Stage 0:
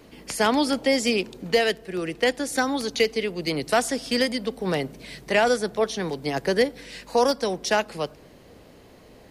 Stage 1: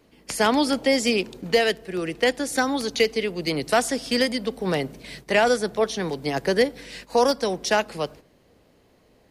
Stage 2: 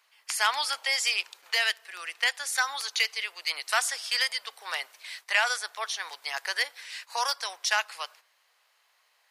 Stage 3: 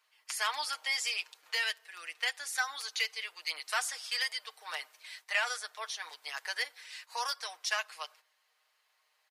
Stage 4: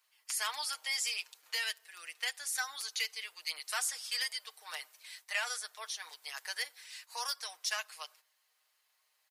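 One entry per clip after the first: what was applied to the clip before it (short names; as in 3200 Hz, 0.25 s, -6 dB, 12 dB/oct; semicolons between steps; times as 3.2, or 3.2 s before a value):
gate -42 dBFS, range -10 dB; gain +1 dB
HPF 1000 Hz 24 dB/oct
comb 6.5 ms; gain -8 dB
high shelf 5700 Hz +12 dB; gain -5.5 dB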